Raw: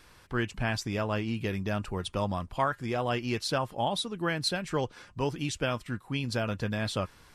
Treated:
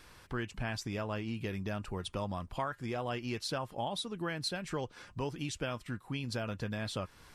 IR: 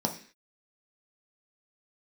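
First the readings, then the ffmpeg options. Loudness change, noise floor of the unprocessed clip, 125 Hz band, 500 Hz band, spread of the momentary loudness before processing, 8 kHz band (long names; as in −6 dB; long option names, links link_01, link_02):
−6.5 dB, −57 dBFS, −6.0 dB, −6.5 dB, 4 LU, −5.0 dB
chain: -af "acompressor=threshold=-38dB:ratio=2"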